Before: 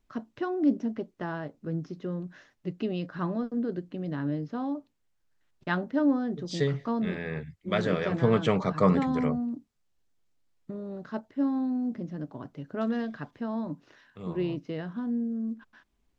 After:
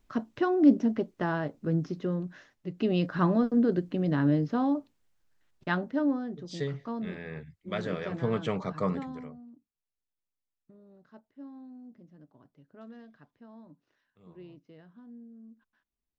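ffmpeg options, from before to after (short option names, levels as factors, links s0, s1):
-af "volume=4.73,afade=t=out:st=1.89:d=0.8:silence=0.421697,afade=t=in:st=2.69:d=0.29:silence=0.354813,afade=t=out:st=4.39:d=1.93:silence=0.251189,afade=t=out:st=8.75:d=0.55:silence=0.237137"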